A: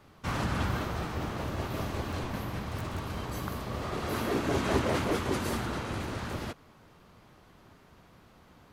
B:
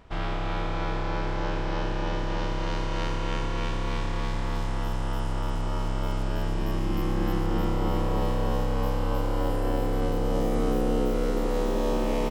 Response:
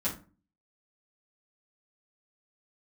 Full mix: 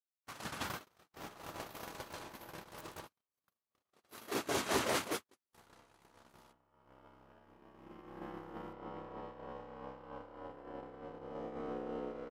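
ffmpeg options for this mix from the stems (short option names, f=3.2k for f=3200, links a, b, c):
-filter_complex "[0:a]volume=-2dB,afade=t=out:st=5.05:d=0.34:silence=0.446684[a];[1:a]lowpass=1.7k,adelay=1000,volume=-7.5dB,asplit=3[b][c][d];[b]atrim=end=3.07,asetpts=PTS-STARTPTS,afade=t=out:st=3.066:d=0.004:c=hsin[e];[c]atrim=start=3.07:end=5.52,asetpts=PTS-STARTPTS,volume=0[f];[d]atrim=start=5.52,asetpts=PTS-STARTPTS,afade=t=in:d=0.004:c=hsin[g];[e][f][g]concat=n=3:v=0:a=1[h];[a][h]amix=inputs=2:normalize=0,agate=range=-60dB:threshold=-30dB:ratio=16:detection=peak,highpass=f=480:p=1,highshelf=f=4.9k:g=10.5"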